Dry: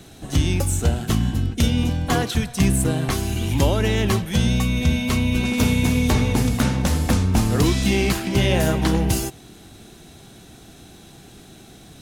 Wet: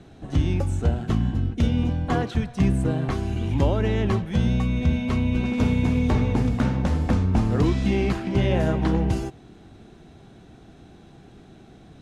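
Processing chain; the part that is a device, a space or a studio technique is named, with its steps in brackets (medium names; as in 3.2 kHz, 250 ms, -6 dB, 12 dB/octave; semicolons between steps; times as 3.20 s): through cloth (low-pass 8.4 kHz 12 dB/octave; treble shelf 3.1 kHz -16.5 dB); trim -2 dB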